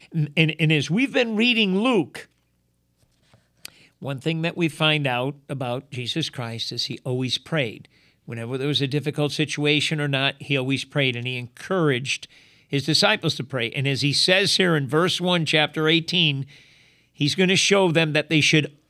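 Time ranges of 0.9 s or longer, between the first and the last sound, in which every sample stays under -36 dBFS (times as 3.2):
2.22–3.65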